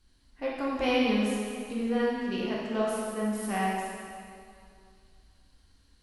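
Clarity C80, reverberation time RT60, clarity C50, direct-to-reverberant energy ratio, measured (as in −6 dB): 0.5 dB, 2.3 s, −1.5 dB, −6.0 dB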